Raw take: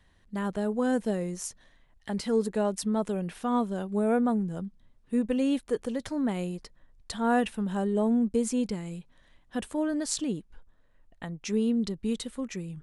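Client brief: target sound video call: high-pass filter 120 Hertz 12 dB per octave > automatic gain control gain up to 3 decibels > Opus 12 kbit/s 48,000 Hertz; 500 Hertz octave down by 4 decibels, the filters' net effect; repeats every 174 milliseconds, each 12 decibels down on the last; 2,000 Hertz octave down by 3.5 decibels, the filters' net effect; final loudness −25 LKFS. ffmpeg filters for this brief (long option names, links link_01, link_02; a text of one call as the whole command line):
ffmpeg -i in.wav -af "highpass=120,equalizer=frequency=500:width_type=o:gain=-4.5,equalizer=frequency=2000:width_type=o:gain=-4.5,aecho=1:1:174|348|522:0.251|0.0628|0.0157,dynaudnorm=maxgain=3dB,volume=7dB" -ar 48000 -c:a libopus -b:a 12k out.opus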